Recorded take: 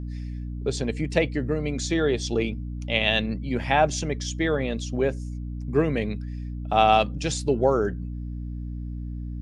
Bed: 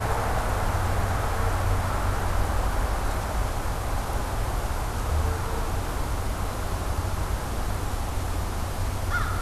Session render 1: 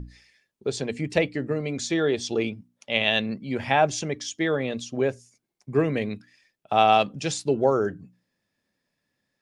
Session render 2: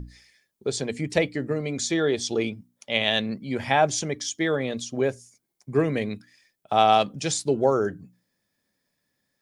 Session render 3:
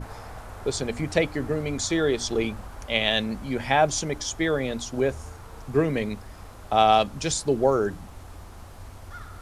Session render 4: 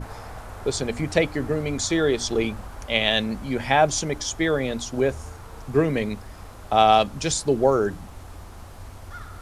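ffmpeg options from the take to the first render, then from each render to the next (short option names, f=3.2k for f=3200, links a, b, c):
-af "bandreject=f=60:t=h:w=6,bandreject=f=120:t=h:w=6,bandreject=f=180:t=h:w=6,bandreject=f=240:t=h:w=6,bandreject=f=300:t=h:w=6"
-af "highshelf=f=8.1k:g=11,bandreject=f=2.7k:w=12"
-filter_complex "[1:a]volume=-14.5dB[a];[0:a][a]amix=inputs=2:normalize=0"
-af "volume=2dB"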